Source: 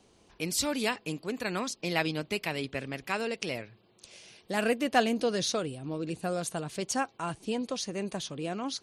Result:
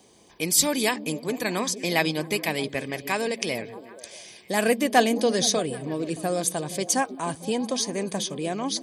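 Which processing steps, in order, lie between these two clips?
treble shelf 7.4 kHz +11.5 dB; comb of notches 1.4 kHz; repeats whose band climbs or falls 156 ms, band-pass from 190 Hz, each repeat 0.7 oct, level -8 dB; trim +6 dB

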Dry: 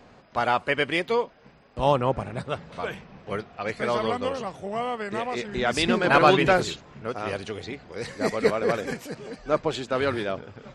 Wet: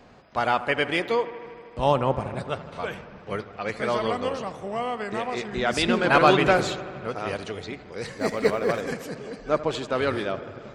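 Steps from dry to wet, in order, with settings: 8.18–8.82 s: companding laws mixed up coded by A; feedback echo behind a low-pass 78 ms, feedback 79%, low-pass 2.3 kHz, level -15.5 dB

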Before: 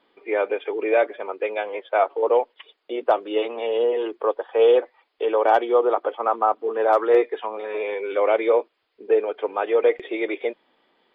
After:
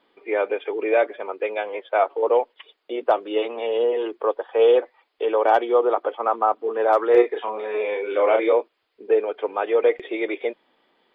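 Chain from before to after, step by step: 7.12–8.53 s: doubling 33 ms -4 dB

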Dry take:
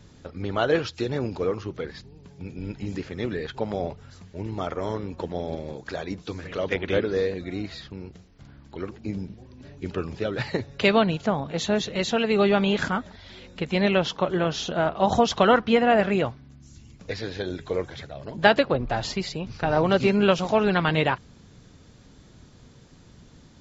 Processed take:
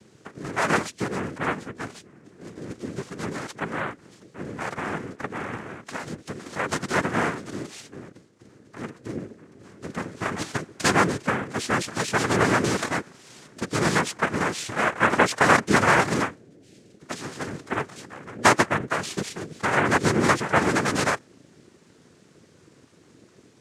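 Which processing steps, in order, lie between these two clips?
dynamic bell 910 Hz, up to +4 dB, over -32 dBFS, Q 0.87; noise-vocoded speech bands 3; trim -2 dB

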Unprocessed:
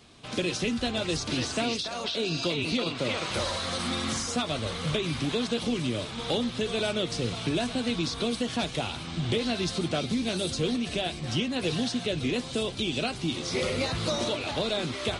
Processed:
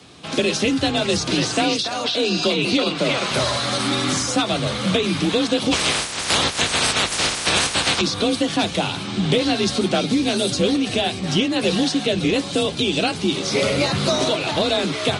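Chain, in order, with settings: 5.71–8.00 s: spectral peaks clipped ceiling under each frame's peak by 29 dB; frequency shift +36 Hz; trim +9 dB

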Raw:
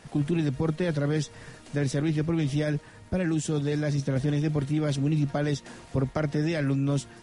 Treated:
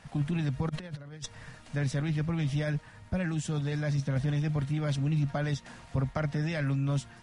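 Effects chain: peaking EQ 370 Hz -12.5 dB 1 oct; 0.69–1.26 s: compressor with a negative ratio -37 dBFS, ratio -0.5; treble shelf 4.2 kHz -7.5 dB

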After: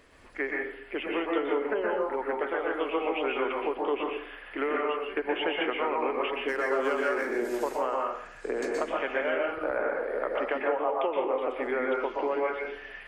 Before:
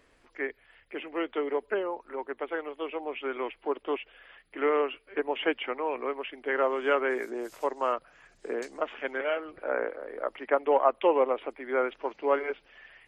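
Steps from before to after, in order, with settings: 6.48–7.37 s: median filter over 9 samples; compression 12:1, threshold -32 dBFS, peak gain reduction 16 dB; plate-style reverb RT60 0.62 s, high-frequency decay 0.6×, pre-delay 110 ms, DRR -1.5 dB; trim +5 dB

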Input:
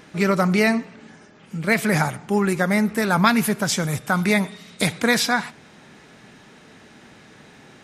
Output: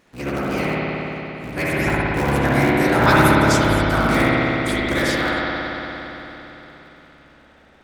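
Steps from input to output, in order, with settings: cycle switcher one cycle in 3, inverted; Doppler pass-by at 3.30 s, 25 m/s, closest 29 m; spring tank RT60 3.8 s, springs 57 ms, chirp 40 ms, DRR -7 dB; trim -2 dB

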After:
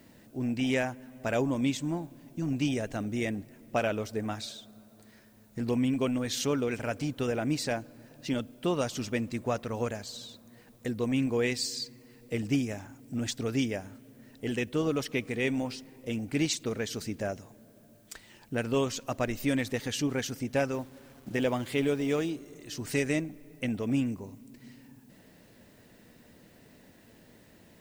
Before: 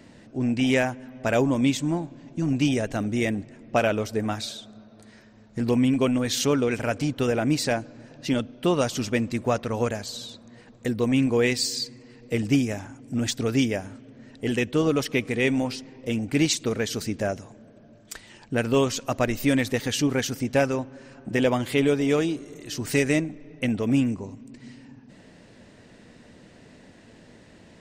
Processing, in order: 20.74–22.30 s: send-on-delta sampling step -44 dBFS; added noise blue -61 dBFS; trim -6.5 dB

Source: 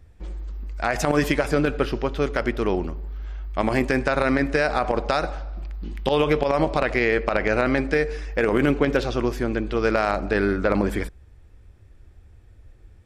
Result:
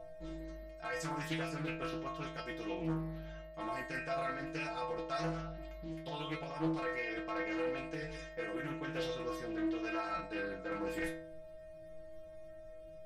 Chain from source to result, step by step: reverse; compression 6:1, threshold -31 dBFS, peak gain reduction 15 dB; reverse; whistle 630 Hz -35 dBFS; inharmonic resonator 160 Hz, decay 0.77 s, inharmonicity 0.008; loudspeaker Doppler distortion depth 0.37 ms; trim +13.5 dB

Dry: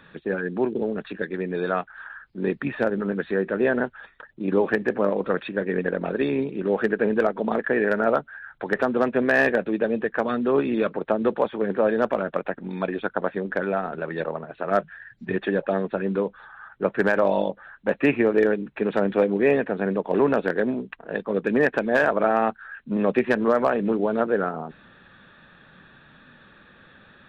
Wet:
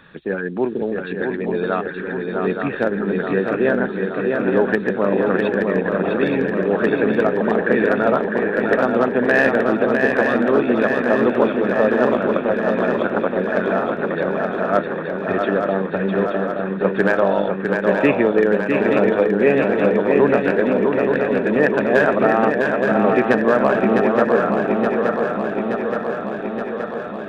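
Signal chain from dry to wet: shuffle delay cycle 873 ms, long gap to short 3:1, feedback 68%, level -4.5 dB; trim +3 dB

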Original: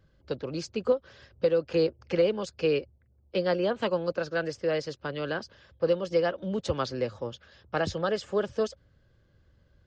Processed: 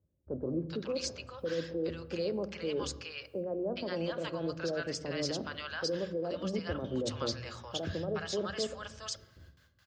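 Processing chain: high-pass 59 Hz 12 dB/octave; gate with hold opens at -54 dBFS; treble shelf 5.4 kHz +8.5 dB; reverse; compression 6:1, threshold -36 dBFS, peak gain reduction 16.5 dB; reverse; peak limiter -33.5 dBFS, peak gain reduction 8.5 dB; bands offset in time lows, highs 420 ms, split 810 Hz; on a send at -12.5 dB: reverberation RT60 1.0 s, pre-delay 3 ms; on the sum: trim +8.5 dB

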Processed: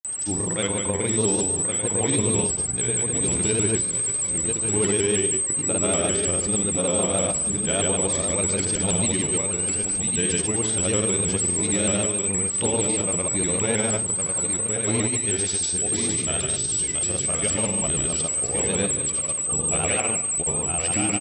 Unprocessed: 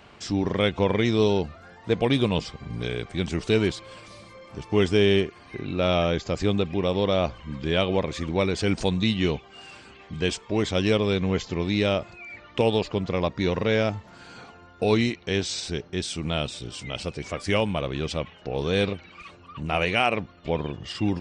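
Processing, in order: in parallel at -2.5 dB: compression, threshold -33 dBFS, peak gain reduction 16 dB; on the sum: feedback delay 74 ms, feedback 46%, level -5.5 dB; saturation -9.5 dBFS, distortion -23 dB; whistle 8.1 kHz -20 dBFS; on a send: delay 1061 ms -5 dB; on the sum: granulator 100 ms, pitch spread up and down by 0 st; vibrato with a chosen wave saw up 6.4 Hz, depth 100 cents; trim -4 dB

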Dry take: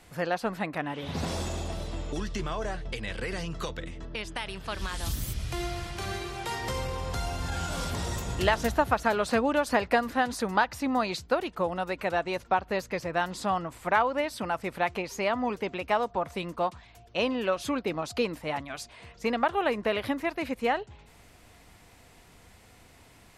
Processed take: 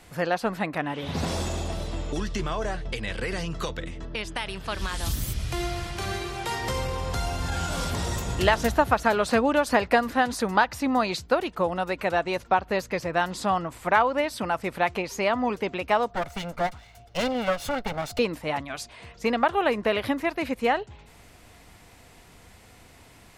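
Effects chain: 16.15–18.19 s: comb filter that takes the minimum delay 1.4 ms; trim +3.5 dB

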